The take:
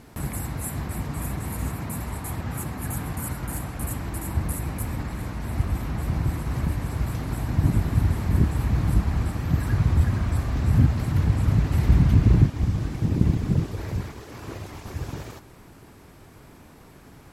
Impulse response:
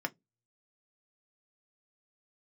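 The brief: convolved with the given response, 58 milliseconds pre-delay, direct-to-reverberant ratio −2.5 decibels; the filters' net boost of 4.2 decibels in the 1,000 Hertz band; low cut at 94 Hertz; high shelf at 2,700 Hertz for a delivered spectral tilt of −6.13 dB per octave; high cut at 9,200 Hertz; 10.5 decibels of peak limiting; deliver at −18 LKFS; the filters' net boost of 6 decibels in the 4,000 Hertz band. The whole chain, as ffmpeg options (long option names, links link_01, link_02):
-filter_complex "[0:a]highpass=94,lowpass=9200,equalizer=frequency=1000:width_type=o:gain=4.5,highshelf=frequency=2700:gain=3.5,equalizer=frequency=4000:width_type=o:gain=4.5,alimiter=limit=-16dB:level=0:latency=1,asplit=2[link_01][link_02];[1:a]atrim=start_sample=2205,adelay=58[link_03];[link_02][link_03]afir=irnorm=-1:irlink=0,volume=-1.5dB[link_04];[link_01][link_04]amix=inputs=2:normalize=0,volume=8dB"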